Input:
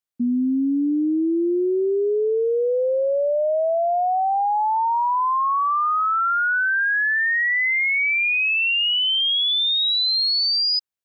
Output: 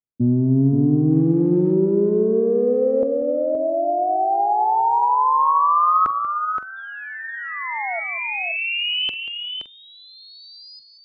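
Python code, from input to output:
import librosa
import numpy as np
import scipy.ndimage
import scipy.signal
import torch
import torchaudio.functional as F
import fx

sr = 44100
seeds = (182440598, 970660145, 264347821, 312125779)

y = fx.octave_divider(x, sr, octaves=1, level_db=1.0)
y = fx.high_shelf(y, sr, hz=2600.0, db=10.5)
y = fx.rev_spring(y, sr, rt60_s=2.2, pass_ms=(37,), chirp_ms=50, drr_db=18.0)
y = fx.quant_companded(y, sr, bits=6, at=(1.11, 1.72))
y = fx.spec_paint(y, sr, seeds[0], shape='fall', start_s=6.76, length_s=1.24, low_hz=650.0, high_hz=3600.0, level_db=-29.0)
y = fx.filter_lfo_lowpass(y, sr, shape='saw_up', hz=0.33, low_hz=380.0, high_hz=1800.0, q=1.0)
y = fx.echo_multitap(y, sr, ms=(45, 187, 522, 566), db=(-17.5, -13.0, -6.5, -19.0))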